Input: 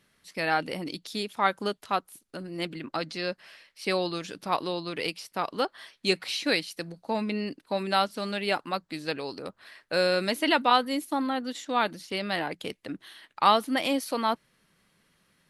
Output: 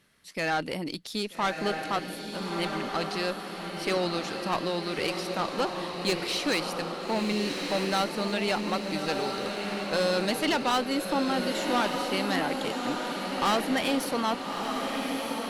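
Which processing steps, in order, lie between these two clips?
tube saturation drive 24 dB, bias 0.35
feedback delay with all-pass diffusion 1,267 ms, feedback 57%, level −4 dB
level +2.5 dB

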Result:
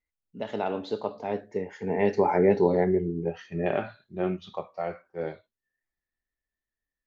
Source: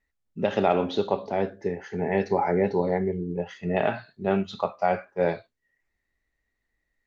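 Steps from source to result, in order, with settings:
source passing by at 0:02.61, 23 m/s, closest 19 metres
dynamic equaliser 340 Hz, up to +5 dB, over −36 dBFS, Q 1.7

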